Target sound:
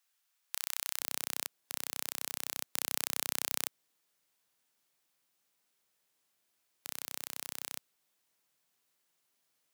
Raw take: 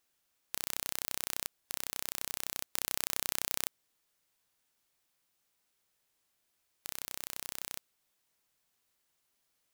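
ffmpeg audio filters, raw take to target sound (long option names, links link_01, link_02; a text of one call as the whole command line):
ffmpeg -i in.wav -af "asetnsamples=nb_out_samples=441:pad=0,asendcmd='1 highpass f 120',highpass=950" out.wav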